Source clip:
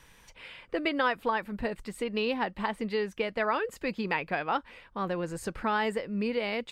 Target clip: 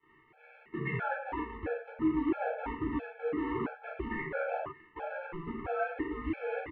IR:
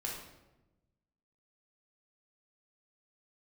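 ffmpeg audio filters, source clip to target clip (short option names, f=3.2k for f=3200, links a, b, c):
-filter_complex "[0:a]asettb=1/sr,asplit=3[a][b][c];[a]atrim=end=1.814[d];[b]atrim=start=1.81:end=3.93,asetpts=PTS-STARTPTS,afade=t=in:d=0.004:c=qsin,afade=t=out:st=2.116:d=0.004:c=qsin,equalizer=f=490:t=o:w=1.9:g=14[e];[c]atrim=start=3.926[f];[d][e]acrossfade=d=0.004:c1=hsin:c2=qsin[g];[g][f]acrossfade=d=0.004:c1=qsin:c2=hsin,acompressor=threshold=-24dB:ratio=10,acrusher=bits=6:dc=4:mix=0:aa=0.000001,asoftclip=type=hard:threshold=-27dB,highpass=f=270:t=q:w=0.5412,highpass=f=270:t=q:w=1.307,lowpass=f=2.5k:t=q:w=0.5176,lowpass=f=2.5k:t=q:w=0.7071,lowpass=f=2.5k:t=q:w=1.932,afreqshift=-160,asplit=2[h][i];[i]adelay=13,volume=-4.5dB[j];[h][j]amix=inputs=2:normalize=0[k];[1:a]atrim=start_sample=2205,atrim=end_sample=6615[l];[k][l]afir=irnorm=-1:irlink=0,afftfilt=real='re*gt(sin(2*PI*1.5*pts/sr)*(1-2*mod(floor(b*sr/1024/440),2)),0)':imag='im*gt(sin(2*PI*1.5*pts/sr)*(1-2*mod(floor(b*sr/1024/440),2)),0)':win_size=1024:overlap=0.75"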